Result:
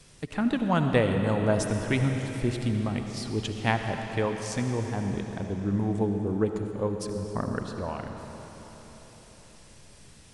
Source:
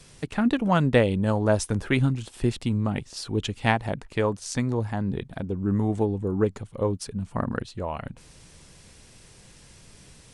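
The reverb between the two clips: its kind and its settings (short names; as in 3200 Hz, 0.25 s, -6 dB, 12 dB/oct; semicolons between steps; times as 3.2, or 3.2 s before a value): digital reverb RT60 4.5 s, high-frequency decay 0.95×, pre-delay 35 ms, DRR 4.5 dB; gain -3.5 dB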